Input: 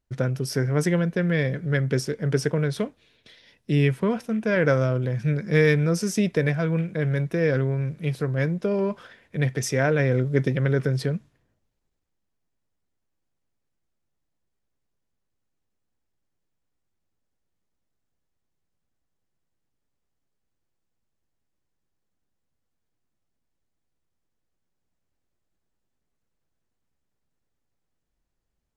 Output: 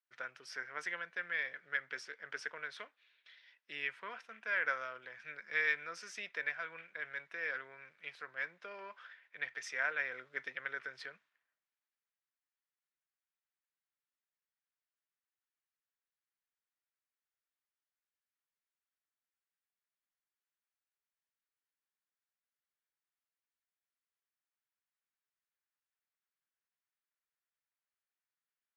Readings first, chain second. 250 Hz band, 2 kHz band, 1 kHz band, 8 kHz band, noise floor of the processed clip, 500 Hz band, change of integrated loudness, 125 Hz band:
-38.5 dB, -5.5 dB, -10.0 dB, -19.0 dB, under -85 dBFS, -26.0 dB, -16.0 dB, under -40 dB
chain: ladder band-pass 2 kHz, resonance 25%; trim +4 dB

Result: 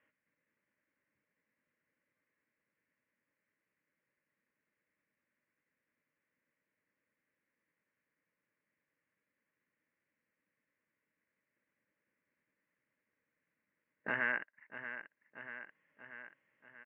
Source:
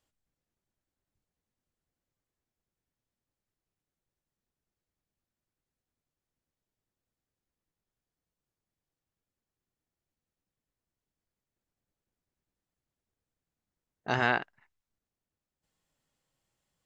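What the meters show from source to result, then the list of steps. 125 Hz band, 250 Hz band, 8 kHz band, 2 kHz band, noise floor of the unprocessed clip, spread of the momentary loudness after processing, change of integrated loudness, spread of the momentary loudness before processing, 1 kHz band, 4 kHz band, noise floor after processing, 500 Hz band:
-19.0 dB, -11.0 dB, no reading, -3.0 dB, under -85 dBFS, 21 LU, -10.5 dB, 18 LU, -13.0 dB, -16.0 dB, under -85 dBFS, -10.5 dB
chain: cabinet simulation 370–2400 Hz, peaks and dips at 380 Hz -9 dB, 630 Hz +9 dB, 910 Hz -4 dB, 1.3 kHz -8 dB, 2 kHz +4 dB; static phaser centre 1.7 kHz, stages 4; feedback delay 635 ms, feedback 49%, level -21 dB; compression 2:1, threshold -59 dBFS, peak gain reduction 17.5 dB; trim +14 dB

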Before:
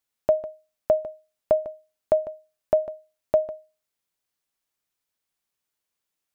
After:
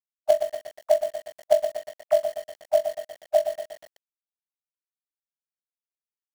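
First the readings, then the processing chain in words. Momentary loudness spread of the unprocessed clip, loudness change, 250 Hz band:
15 LU, +0.5 dB, under -10 dB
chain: formants replaced by sine waves; spectral noise reduction 15 dB; in parallel at -3.5 dB: companded quantiser 4-bit; on the sum: bit-crushed delay 120 ms, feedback 55%, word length 6-bit, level -8 dB; trim -3.5 dB

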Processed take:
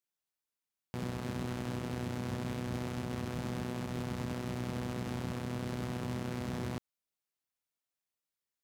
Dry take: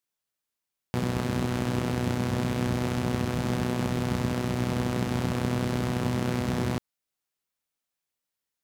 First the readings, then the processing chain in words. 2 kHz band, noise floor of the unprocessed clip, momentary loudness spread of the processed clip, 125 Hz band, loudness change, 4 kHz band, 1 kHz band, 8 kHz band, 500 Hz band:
-9.5 dB, under -85 dBFS, 1 LU, -9.5 dB, -9.5 dB, -9.5 dB, -9.5 dB, -9.5 dB, -9.5 dB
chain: peak limiter -20.5 dBFS, peak gain reduction 7.5 dB; trim -6.5 dB

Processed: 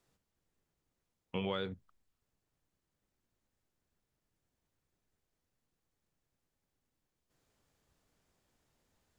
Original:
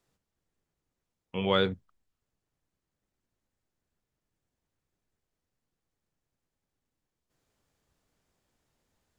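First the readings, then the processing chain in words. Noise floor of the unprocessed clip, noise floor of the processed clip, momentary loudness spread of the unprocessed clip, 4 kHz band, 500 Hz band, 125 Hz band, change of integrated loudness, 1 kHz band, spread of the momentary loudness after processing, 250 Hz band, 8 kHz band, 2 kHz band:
under -85 dBFS, under -85 dBFS, 15 LU, -11.5 dB, -10.5 dB, -8.0 dB, -10.5 dB, -10.5 dB, 10 LU, -8.0 dB, no reading, -11.0 dB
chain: compression 16:1, threshold -32 dBFS, peak gain reduction 13 dB

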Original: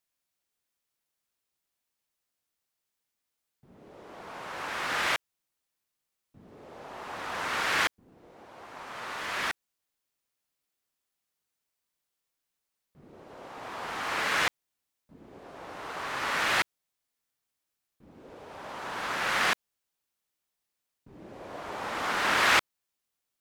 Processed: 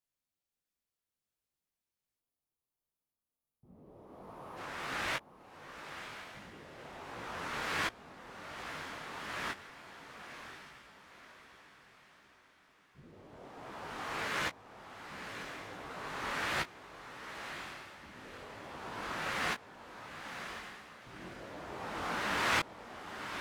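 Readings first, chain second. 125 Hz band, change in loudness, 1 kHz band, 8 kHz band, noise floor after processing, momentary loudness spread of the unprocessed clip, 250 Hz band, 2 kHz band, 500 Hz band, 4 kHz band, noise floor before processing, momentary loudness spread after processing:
0.0 dB, -10.5 dB, -7.0 dB, -8.0 dB, under -85 dBFS, 20 LU, -2.0 dB, -8.0 dB, -5.0 dB, -8.0 dB, -85 dBFS, 19 LU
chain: time-frequency box 2.19–4.57 s, 1.3–9 kHz -9 dB; bass shelf 360 Hz +9 dB; echo that smears into a reverb 1036 ms, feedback 45%, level -8 dB; detune thickener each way 48 cents; trim -5 dB

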